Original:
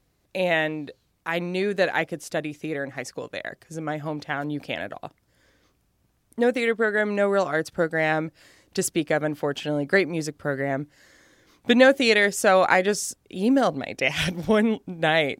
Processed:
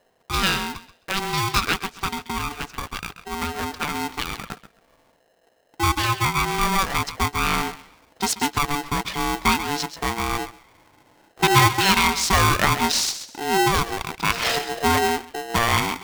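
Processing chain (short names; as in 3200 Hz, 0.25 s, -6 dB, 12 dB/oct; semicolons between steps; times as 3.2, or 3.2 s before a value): speed glide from 118% -> 74%; bell 4700 Hz +10.5 dB 0.75 oct; notch 690 Hz, Q 15; in parallel at +1 dB: compressor, threshold -33 dBFS, peak gain reduction 20.5 dB; on the sum: low-pass opened by the level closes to 730 Hz, open at -16 dBFS; thinning echo 0.133 s, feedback 26%, high-pass 750 Hz, level -10.5 dB; polarity switched at an audio rate 580 Hz; gain -1.5 dB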